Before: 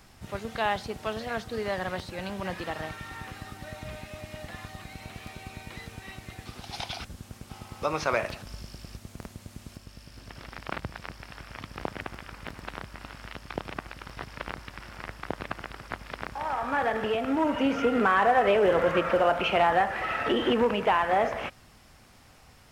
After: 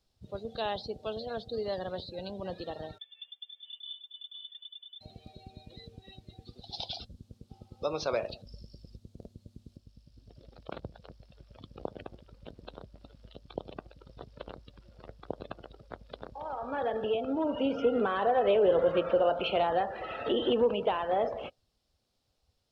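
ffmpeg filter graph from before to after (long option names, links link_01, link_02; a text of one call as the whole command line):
ffmpeg -i in.wav -filter_complex "[0:a]asettb=1/sr,asplit=3[link_01][link_02][link_03];[link_01]atrim=end=2.984[link_04];[link_02]atrim=start=2.98:end=5.01,asetpts=PTS-STARTPTS,afade=type=in:duration=0.004:curve=qsin,afade=type=out:start_time=2.026:duration=0.004:curve=qsin,agate=range=-33dB:threshold=-35dB:ratio=3:release=100:detection=peak,aecho=1:1:483:0.631,atrim=end_sample=89523,lowpass=frequency=3100:width_type=q:width=0.5098,lowpass=frequency=3100:width_type=q:width=0.6013,lowpass=frequency=3100:width_type=q:width=0.9,lowpass=frequency=3100:width_type=q:width=2.563,afreqshift=-3600[link_05];[link_03]atrim=start=5.006[link_06];[link_04][link_05]acrossfade=duration=0.004:curve1=hsin:curve2=qsin[link_07];[link_07][link_06]acrossfade=duration=0.004:curve1=qsin:curve2=hsin,equalizer=frequency=500:width_type=o:width=1:gain=7,equalizer=frequency=1000:width_type=o:width=1:gain=-3,equalizer=frequency=2000:width_type=o:width=1:gain=-8,equalizer=frequency=4000:width_type=o:width=1:gain=11,afftdn=noise_reduction=19:noise_floor=-37,volume=-6.5dB" out.wav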